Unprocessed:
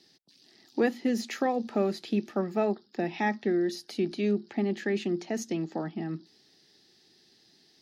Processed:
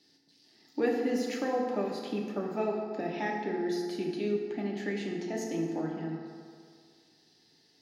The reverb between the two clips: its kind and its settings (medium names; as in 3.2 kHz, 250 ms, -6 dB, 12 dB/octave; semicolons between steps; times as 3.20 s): FDN reverb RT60 2.1 s, low-frequency decay 0.85×, high-frequency decay 0.5×, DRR -1.5 dB; trim -6 dB